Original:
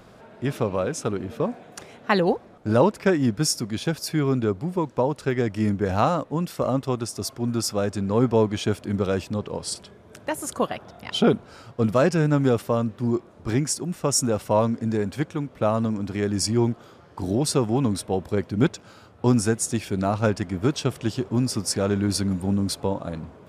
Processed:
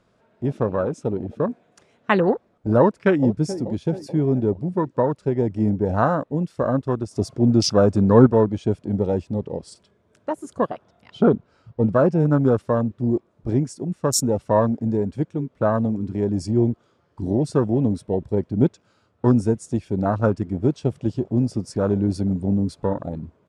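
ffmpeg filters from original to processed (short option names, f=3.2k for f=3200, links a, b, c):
-filter_complex "[0:a]asplit=2[a][b];[b]afade=t=in:st=2.79:d=0.01,afade=t=out:st=3.2:d=0.01,aecho=0:1:430|860|1290|1720|2150|2580:0.281838|0.155011|0.0852561|0.0468908|0.02579|0.0141845[c];[a][c]amix=inputs=2:normalize=0,asettb=1/sr,asplit=3[d][e][f];[d]atrim=end=7.114[g];[e]atrim=start=7.11:end=8.27,asetpts=PTS-STARTPTS,afade=t=in:d=0.004:c=qsin,afade=t=out:st=1.156:d=0.004:c=qsin,acontrast=71[h];[f]atrim=start=8.266[i];[g][h]acrossfade=d=0.004:c1=hsin:c2=qsin[j];[j][i]acrossfade=d=0.004:c1=qsin:c2=hsin,asettb=1/sr,asplit=3[k][l][m];[k]atrim=end=11.114[n];[l]atrim=start=11.11:end=12.2,asetpts=PTS-STARTPTS,afade=t=in:d=0.004:c=qsin,afade=t=out:st=1.086:d=0.004:c=qsin,lowpass=f=3.6k:p=1[o];[m]atrim=start=12.196[p];[n][o]acrossfade=d=0.004:c1=hsin:c2=qsin[q];[q][p]acrossfade=d=0.004:c1=qsin:c2=hsin,lowpass=f=9.8k:w=0.5412,lowpass=f=9.8k:w=1.3066,bandreject=f=780:w=15,afwtdn=0.0501,volume=2.5dB"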